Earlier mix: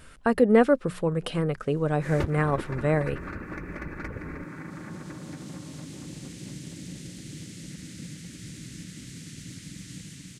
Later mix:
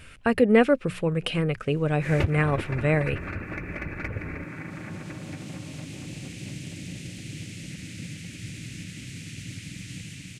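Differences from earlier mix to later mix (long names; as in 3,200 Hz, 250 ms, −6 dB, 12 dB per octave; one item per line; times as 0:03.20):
background: add parametric band 690 Hz +6 dB 0.56 octaves
master: add graphic EQ with 15 bands 100 Hz +9 dB, 1,000 Hz −3 dB, 2,500 Hz +11 dB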